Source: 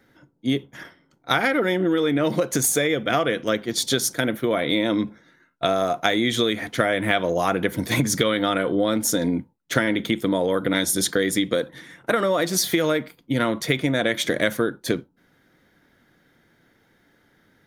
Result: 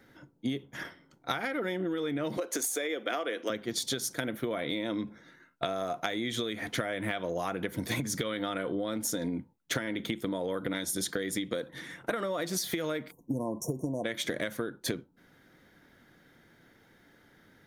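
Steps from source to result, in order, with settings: 2.37–3.5 HPF 290 Hz 24 dB/oct; 13.11–14.04 spectral delete 1100–5400 Hz; compressor 10:1, threshold -29 dBFS, peak gain reduction 15.5 dB

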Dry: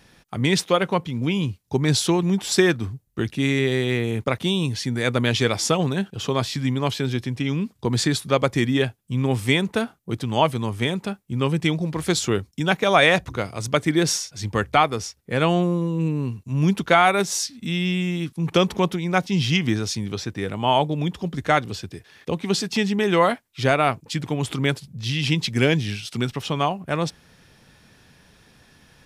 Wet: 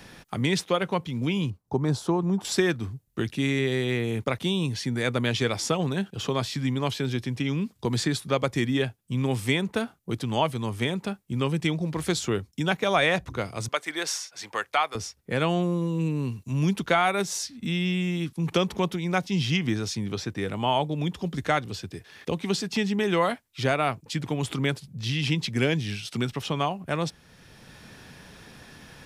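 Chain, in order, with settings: 1.5–2.45 resonant high shelf 1600 Hz -12.5 dB, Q 1.5; 13.68–14.95 HPF 710 Hz 12 dB/oct; three-band squash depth 40%; gain -4.5 dB

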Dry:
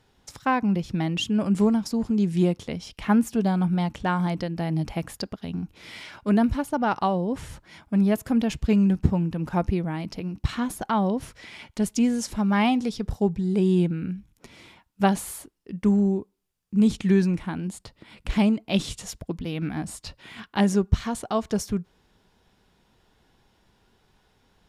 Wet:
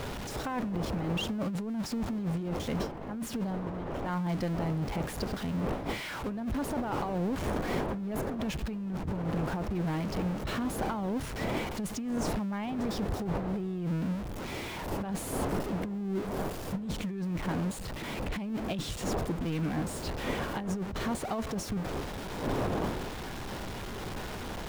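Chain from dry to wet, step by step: zero-crossing step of -26 dBFS; wind noise 590 Hz -27 dBFS; negative-ratio compressor -23 dBFS, ratio -1; high shelf 3300 Hz -8.5 dB; gain -8.5 dB

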